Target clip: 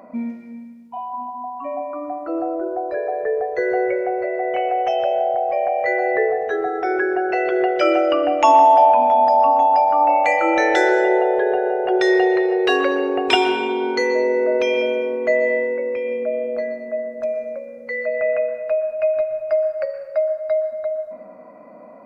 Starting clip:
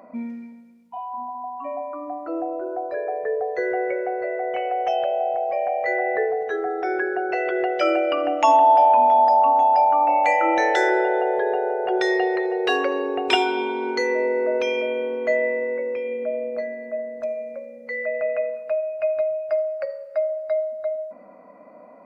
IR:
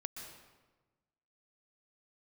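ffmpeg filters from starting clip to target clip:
-filter_complex "[0:a]asplit=2[a][b];[1:a]atrim=start_sample=2205,lowshelf=f=210:g=9.5[c];[b][c]afir=irnorm=-1:irlink=0,volume=1dB[d];[a][d]amix=inputs=2:normalize=0,volume=-2dB"

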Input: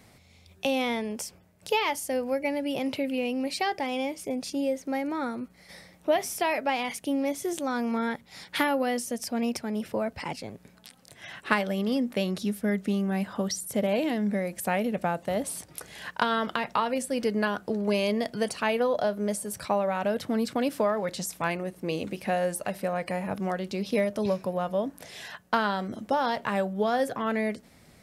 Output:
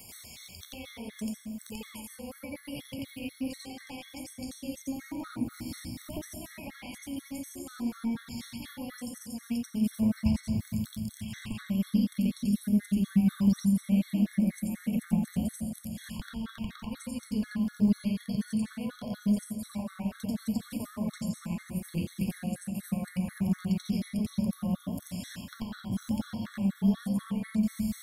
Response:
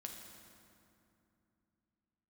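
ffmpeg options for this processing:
-filter_complex "[0:a]crystalizer=i=8:c=0,acompressor=threshold=-30dB:ratio=16,asubboost=boost=11.5:cutoff=120,acrossover=split=350[a][b];[b]acompressor=threshold=-45dB:ratio=8[c];[a][c]amix=inputs=2:normalize=0,asplit=2[d][e];[1:a]atrim=start_sample=2205,adelay=88[f];[e][f]afir=irnorm=-1:irlink=0,volume=6.5dB[g];[d][g]amix=inputs=2:normalize=0,afftfilt=real='re*gt(sin(2*PI*4.1*pts/sr)*(1-2*mod(floor(b*sr/1024/1100),2)),0)':imag='im*gt(sin(2*PI*4.1*pts/sr)*(1-2*mod(floor(b*sr/1024/1100),2)),0)':win_size=1024:overlap=0.75"

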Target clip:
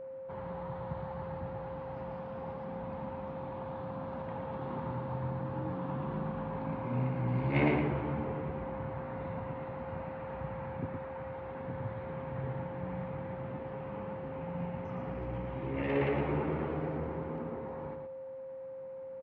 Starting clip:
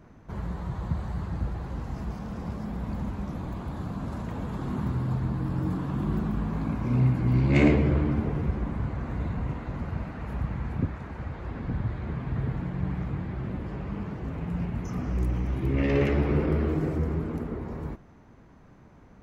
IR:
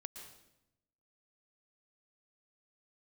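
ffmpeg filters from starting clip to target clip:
-af "highpass=140,equalizer=f=210:t=q:w=4:g=-6,equalizer=f=330:t=q:w=4:g=-4,equalizer=f=880:t=q:w=4:g=9,lowpass=f=3.3k:w=0.5412,lowpass=f=3.3k:w=1.3066,aecho=1:1:115:0.531,aeval=exprs='val(0)+0.0178*sin(2*PI*530*n/s)':c=same,volume=-6dB"

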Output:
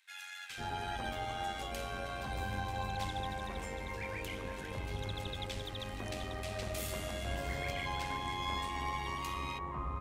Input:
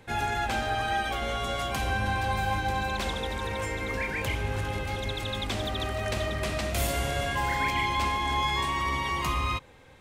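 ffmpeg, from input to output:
-filter_complex "[0:a]acrossover=split=1600[a][b];[a]adelay=500[c];[c][b]amix=inputs=2:normalize=0,tremolo=f=91:d=0.462,volume=-7dB"

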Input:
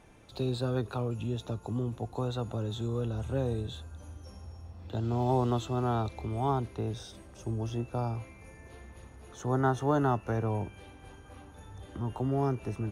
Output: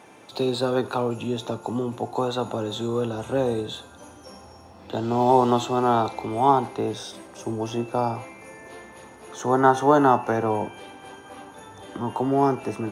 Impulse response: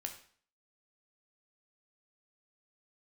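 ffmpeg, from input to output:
-filter_complex "[0:a]highpass=240,asplit=2[a][b];[b]equalizer=f=910:w=2.1:g=8.5[c];[1:a]atrim=start_sample=2205[d];[c][d]afir=irnorm=-1:irlink=0,volume=-4dB[e];[a][e]amix=inputs=2:normalize=0,volume=7dB"

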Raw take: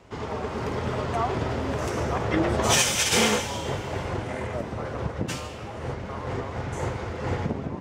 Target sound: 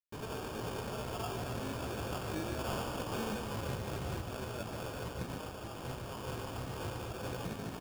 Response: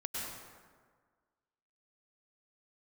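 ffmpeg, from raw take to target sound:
-filter_complex "[0:a]asettb=1/sr,asplit=3[a][b][c];[a]atrim=end=3.264[d];[b]atrim=start=3.26:end=4.2,asetpts=PTS-STARTPTS,afade=t=in:d=0.004:c=qsin,afade=t=out:st=0.936:d=0.004:c=qsin,lowshelf=f=490:g=9.5[e];[c]atrim=start=4.196[f];[d][e]acrossfade=d=0.004:c1=hsin:c2=qsin[g];[g][f]acrossfade=d=0.004:c1=qsin:c2=hsin,acrossover=split=1000|4400[h][i][j];[h]acompressor=threshold=-27dB:ratio=4[k];[i]acompressor=threshold=-40dB:ratio=4[l];[j]acompressor=threshold=-30dB:ratio=4[m];[k][l][m]amix=inputs=3:normalize=0,acrusher=bits=5:mix=0:aa=0.000001,flanger=delay=15.5:depth=3.8:speed=2.7,acrusher=samples=22:mix=1:aa=0.000001,aecho=1:1:147:0.447,volume=-7dB"

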